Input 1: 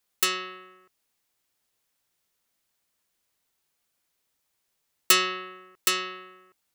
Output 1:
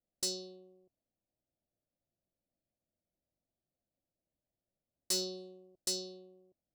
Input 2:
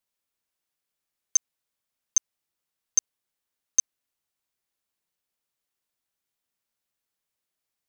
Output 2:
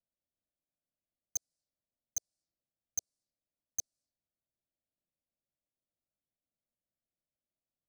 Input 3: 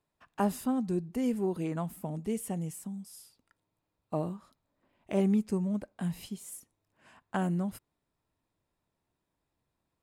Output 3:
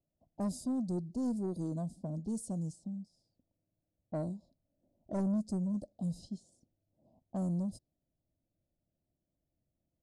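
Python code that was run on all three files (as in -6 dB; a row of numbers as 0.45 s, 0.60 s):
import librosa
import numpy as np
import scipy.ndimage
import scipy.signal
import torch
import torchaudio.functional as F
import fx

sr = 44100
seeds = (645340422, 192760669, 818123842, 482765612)

y = scipy.signal.sosfilt(scipy.signal.ellip(3, 1.0, 50, [640.0, 4500.0], 'bandstop', fs=sr, output='sos'), x)
y = fx.env_lowpass(y, sr, base_hz=1100.0, full_db=-30.0)
y = scipy.signal.sosfilt(scipy.signal.butter(6, 10000.0, 'lowpass', fs=sr, output='sos'), y)
y = fx.peak_eq(y, sr, hz=430.0, db=-11.0, octaves=0.31)
y = 10.0 ** (-28.0 / 20.0) * np.tanh(y / 10.0 ** (-28.0 / 20.0))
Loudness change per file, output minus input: -12.0 LU, -14.0 LU, -4.0 LU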